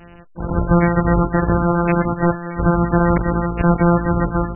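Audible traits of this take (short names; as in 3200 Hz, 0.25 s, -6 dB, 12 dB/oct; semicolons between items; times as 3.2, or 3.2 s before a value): a buzz of ramps at a fixed pitch in blocks of 256 samples; MP3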